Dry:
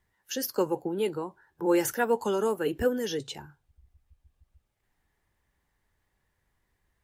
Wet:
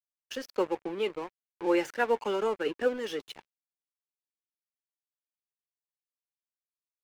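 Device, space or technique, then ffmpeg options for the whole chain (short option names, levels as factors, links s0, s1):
pocket radio on a weak battery: -af "highpass=300,lowpass=4300,aeval=exprs='sgn(val(0))*max(abs(val(0))-0.00668,0)':c=same,equalizer=f=2400:t=o:w=0.59:g=5"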